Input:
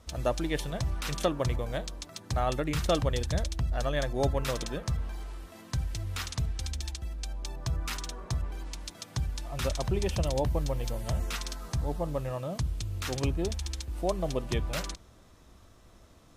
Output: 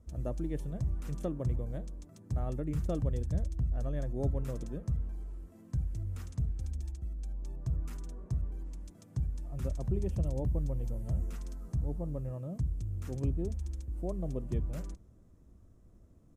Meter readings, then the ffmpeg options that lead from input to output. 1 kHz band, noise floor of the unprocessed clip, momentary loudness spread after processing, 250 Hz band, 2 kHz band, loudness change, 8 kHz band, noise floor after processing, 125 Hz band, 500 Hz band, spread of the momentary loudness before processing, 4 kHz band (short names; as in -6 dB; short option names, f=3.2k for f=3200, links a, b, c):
-15.5 dB, -56 dBFS, 9 LU, -3.0 dB, under -15 dB, -4.0 dB, -17.0 dB, -58 dBFS, -1.5 dB, -9.0 dB, 9 LU, under -20 dB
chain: -af "firequalizer=gain_entry='entry(190,0);entry(820,-15);entry(3800,-25);entry(7100,-14)':delay=0.05:min_phase=1,volume=-1.5dB"